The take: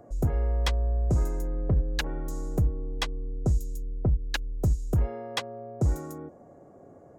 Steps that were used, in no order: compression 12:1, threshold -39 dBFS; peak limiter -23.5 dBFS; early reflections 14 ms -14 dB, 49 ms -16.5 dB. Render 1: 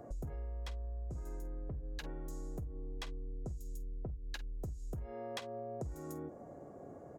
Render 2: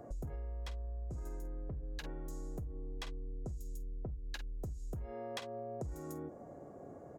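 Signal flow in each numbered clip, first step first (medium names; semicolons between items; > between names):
peak limiter > early reflections > compression; early reflections > peak limiter > compression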